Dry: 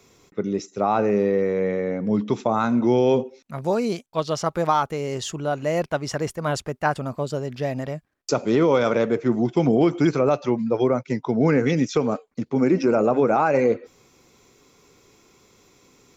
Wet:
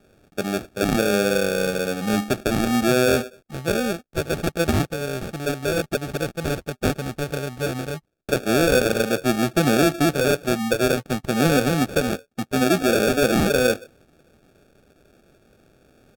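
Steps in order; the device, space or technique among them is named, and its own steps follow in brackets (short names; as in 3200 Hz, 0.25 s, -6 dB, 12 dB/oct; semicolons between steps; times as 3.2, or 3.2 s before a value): crushed at another speed (playback speed 1.25×; sample-and-hold 35×; playback speed 0.8×)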